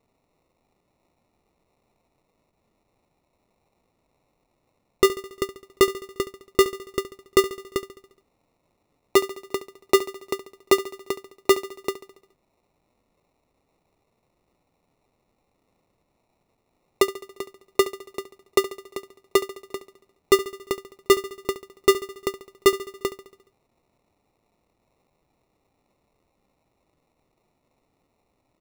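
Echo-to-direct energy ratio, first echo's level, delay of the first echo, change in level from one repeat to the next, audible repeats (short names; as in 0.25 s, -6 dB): -13.0 dB, -15.0 dB, 70 ms, -4.5 dB, 5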